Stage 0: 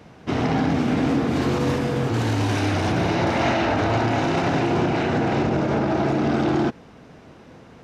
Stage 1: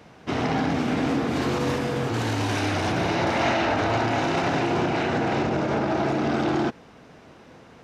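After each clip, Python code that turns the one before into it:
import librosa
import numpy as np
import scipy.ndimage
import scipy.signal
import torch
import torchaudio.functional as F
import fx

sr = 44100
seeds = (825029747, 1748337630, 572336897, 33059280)

y = fx.low_shelf(x, sr, hz=370.0, db=-5.5)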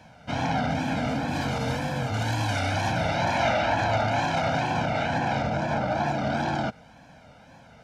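y = x + 0.97 * np.pad(x, (int(1.3 * sr / 1000.0), 0))[:len(x)]
y = fx.wow_flutter(y, sr, seeds[0], rate_hz=2.1, depth_cents=110.0)
y = F.gain(torch.from_numpy(y), -4.5).numpy()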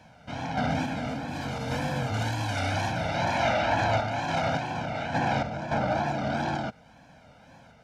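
y = fx.tremolo_random(x, sr, seeds[1], hz=3.5, depth_pct=55)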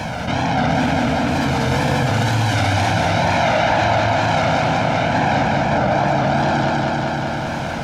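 y = fx.echo_feedback(x, sr, ms=196, feedback_pct=57, wet_db=-4.0)
y = fx.env_flatten(y, sr, amount_pct=70)
y = F.gain(torch.from_numpy(y), 5.5).numpy()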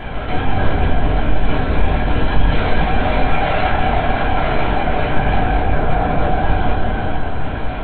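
y = fx.lpc_vocoder(x, sr, seeds[2], excitation='whisper', order=10)
y = fx.room_shoebox(y, sr, seeds[3], volume_m3=230.0, walls='furnished', distance_m=3.0)
y = F.gain(torch.from_numpy(y), -7.5).numpy()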